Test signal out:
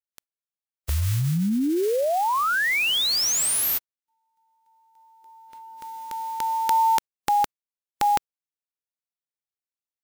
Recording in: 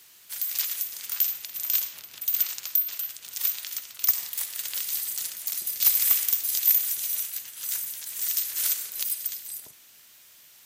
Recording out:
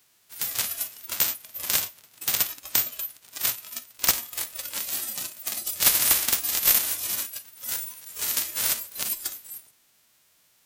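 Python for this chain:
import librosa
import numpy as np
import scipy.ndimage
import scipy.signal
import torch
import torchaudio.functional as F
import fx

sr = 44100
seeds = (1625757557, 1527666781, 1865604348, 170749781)

y = fx.envelope_flatten(x, sr, power=0.3)
y = fx.noise_reduce_blind(y, sr, reduce_db=11)
y = y * 10.0 ** (1.0 / 20.0)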